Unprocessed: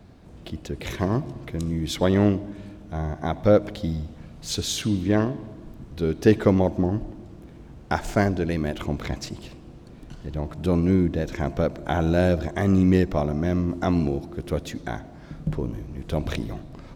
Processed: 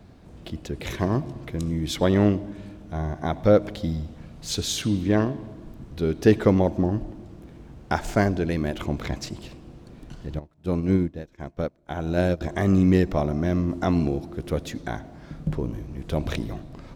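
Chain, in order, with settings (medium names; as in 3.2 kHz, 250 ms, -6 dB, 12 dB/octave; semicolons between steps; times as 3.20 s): 10.39–12.41 s: upward expansion 2.5:1, over -35 dBFS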